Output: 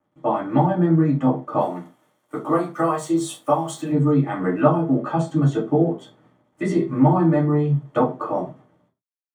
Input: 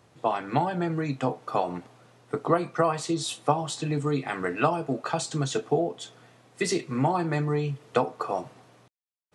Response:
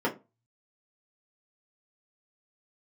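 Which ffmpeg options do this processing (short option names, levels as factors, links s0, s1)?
-filter_complex "[0:a]aeval=exprs='sgn(val(0))*max(abs(val(0))-0.002,0)':c=same,asplit=3[s0][s1][s2];[s0]afade=t=out:st=1.59:d=0.02[s3];[s1]aemphasis=mode=production:type=riaa,afade=t=in:st=1.59:d=0.02,afade=t=out:st=3.91:d=0.02[s4];[s2]afade=t=in:st=3.91:d=0.02[s5];[s3][s4][s5]amix=inputs=3:normalize=0[s6];[1:a]atrim=start_sample=2205,afade=t=out:st=0.14:d=0.01,atrim=end_sample=6615,asetrate=28224,aresample=44100[s7];[s6][s7]afir=irnorm=-1:irlink=0,volume=0.335"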